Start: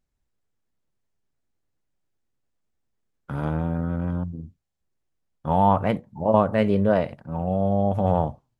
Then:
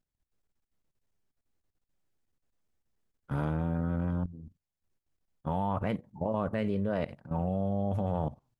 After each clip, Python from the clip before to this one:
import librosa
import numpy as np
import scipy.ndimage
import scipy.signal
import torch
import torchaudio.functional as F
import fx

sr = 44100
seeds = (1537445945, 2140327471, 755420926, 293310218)

y = fx.dynamic_eq(x, sr, hz=750.0, q=1.3, threshold_db=-31.0, ratio=4.0, max_db=-4)
y = fx.level_steps(y, sr, step_db=15)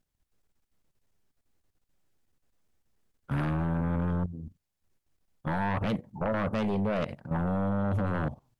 y = fx.fold_sine(x, sr, drive_db=9, ceiling_db=-17.0)
y = F.gain(torch.from_numpy(y), -7.0).numpy()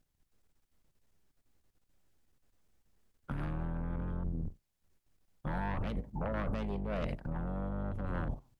y = fx.octave_divider(x, sr, octaves=2, level_db=1.0)
y = fx.over_compress(y, sr, threshold_db=-31.0, ratio=-1.0)
y = F.gain(torch.from_numpy(y), -4.0).numpy()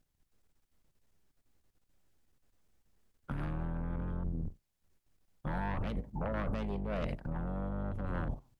y = x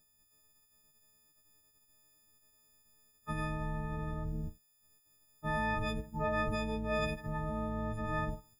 y = fx.freq_snap(x, sr, grid_st=6)